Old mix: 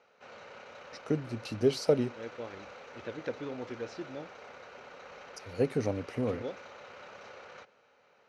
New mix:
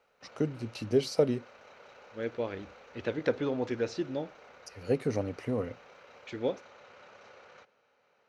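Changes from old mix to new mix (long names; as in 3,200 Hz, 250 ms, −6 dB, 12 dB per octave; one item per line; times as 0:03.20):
first voice: entry −0.70 s
second voice +8.0 dB
background −5.0 dB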